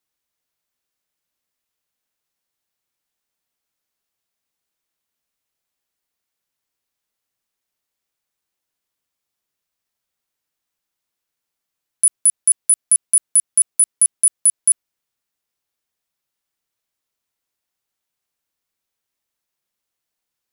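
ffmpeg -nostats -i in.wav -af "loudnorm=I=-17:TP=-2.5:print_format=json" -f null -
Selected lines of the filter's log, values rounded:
"input_i" : "-14.6",
"input_tp" : "-7.3",
"input_lra" : "5.1",
"input_thresh" : "-24.6",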